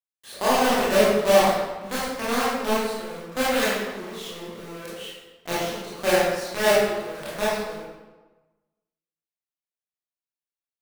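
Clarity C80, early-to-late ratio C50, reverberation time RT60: 1.0 dB, −2.0 dB, 1.2 s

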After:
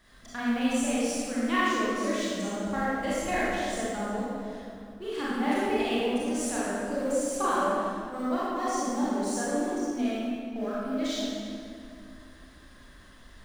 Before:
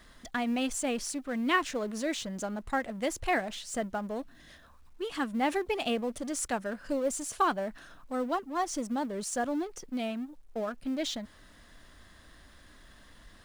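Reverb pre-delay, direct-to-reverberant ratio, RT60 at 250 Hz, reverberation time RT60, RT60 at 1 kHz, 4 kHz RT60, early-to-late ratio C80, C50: 28 ms, −9.5 dB, 2.8 s, 2.3 s, 2.1 s, 1.6 s, −2.5 dB, −5.0 dB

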